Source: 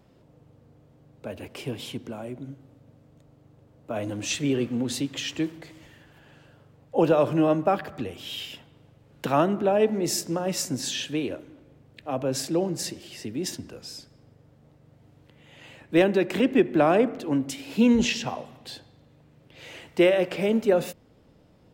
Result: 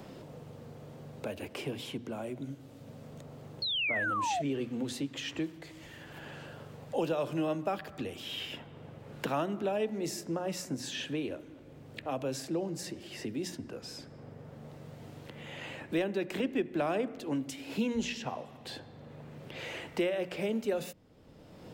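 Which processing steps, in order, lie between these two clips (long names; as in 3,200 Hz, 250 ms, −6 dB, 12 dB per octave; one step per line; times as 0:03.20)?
sound drawn into the spectrogram fall, 0:03.62–0:04.42, 640–4,400 Hz −24 dBFS
mains-hum notches 60/120/180/240/300 Hz
multiband upward and downward compressor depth 70%
level −8 dB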